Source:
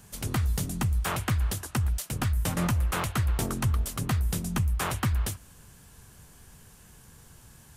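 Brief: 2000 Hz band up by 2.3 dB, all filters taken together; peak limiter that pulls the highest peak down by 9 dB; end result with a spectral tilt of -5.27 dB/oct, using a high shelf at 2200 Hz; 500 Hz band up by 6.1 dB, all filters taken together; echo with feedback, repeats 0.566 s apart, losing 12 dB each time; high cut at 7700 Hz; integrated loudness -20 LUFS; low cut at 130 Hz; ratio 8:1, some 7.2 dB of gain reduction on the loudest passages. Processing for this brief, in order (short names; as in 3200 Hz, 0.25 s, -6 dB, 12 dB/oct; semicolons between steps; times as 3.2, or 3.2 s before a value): HPF 130 Hz; LPF 7700 Hz; bell 500 Hz +8 dB; bell 2000 Hz +4.5 dB; high shelf 2200 Hz -4 dB; compressor 8:1, threshold -31 dBFS; limiter -26 dBFS; feedback echo 0.566 s, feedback 25%, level -12 dB; gain +18.5 dB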